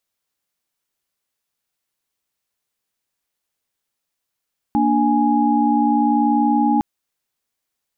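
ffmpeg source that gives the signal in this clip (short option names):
-f lavfi -i "aevalsrc='0.126*(sin(2*PI*233.08*t)+sin(2*PI*293.66*t)+sin(2*PI*830.61*t))':d=2.06:s=44100"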